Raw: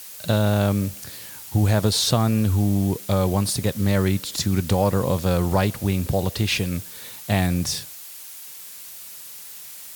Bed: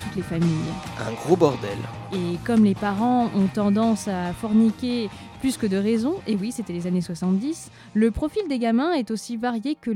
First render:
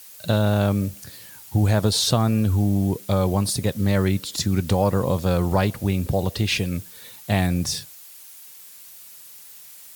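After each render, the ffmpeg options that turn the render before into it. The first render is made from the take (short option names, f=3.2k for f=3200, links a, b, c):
-af "afftdn=nr=6:nf=-40"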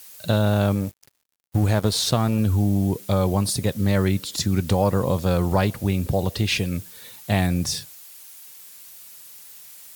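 -filter_complex "[0:a]asettb=1/sr,asplit=3[a][b][c];[a]atrim=end=0.754[d];[b]atrim=start=0.75:end=2.39,asetpts=PTS-STARTPTS,afade=t=in:d=0.004:c=qsin,afade=t=out:st=1.636:d=0.004:c=qsin,aeval=exprs='sgn(val(0))*max(abs(val(0))-0.0211,0)':c=same[e];[c]atrim=start=2.386[f];[d][e]acrossfade=d=0.004:c1=hsin:c2=qsin[g];[g][f]acrossfade=d=0.004:c1=qsin:c2=hsin"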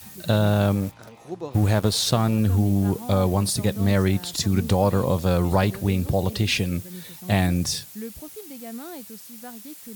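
-filter_complex "[1:a]volume=-16dB[a];[0:a][a]amix=inputs=2:normalize=0"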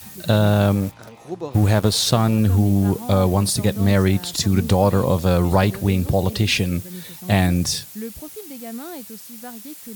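-af "volume=3.5dB"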